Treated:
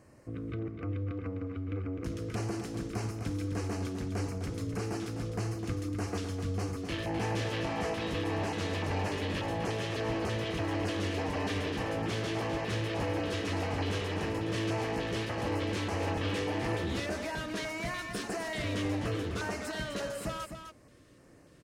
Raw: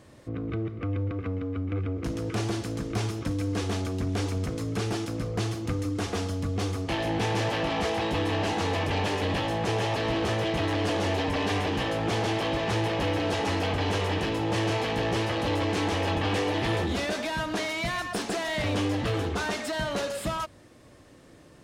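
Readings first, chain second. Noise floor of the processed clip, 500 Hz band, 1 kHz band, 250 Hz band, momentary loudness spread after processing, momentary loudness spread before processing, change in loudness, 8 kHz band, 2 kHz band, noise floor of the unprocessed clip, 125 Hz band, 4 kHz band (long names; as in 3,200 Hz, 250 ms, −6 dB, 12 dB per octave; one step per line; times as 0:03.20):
−57 dBFS, −6.0 dB, −7.5 dB, −5.0 dB, 4 LU, 4 LU, −5.5 dB, −5.5 dB, −6.0 dB, −52 dBFS, −5.0 dB, −7.5 dB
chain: auto-filter notch square 1.7 Hz 810–3,500 Hz
single-tap delay 255 ms −8 dB
level −5.5 dB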